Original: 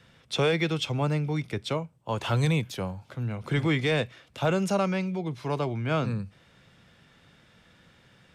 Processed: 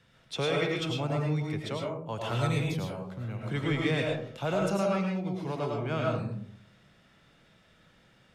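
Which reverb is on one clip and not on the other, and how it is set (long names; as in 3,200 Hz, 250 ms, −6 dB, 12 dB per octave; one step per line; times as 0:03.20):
comb and all-pass reverb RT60 0.61 s, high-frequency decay 0.35×, pre-delay 65 ms, DRR −1.5 dB
level −6.5 dB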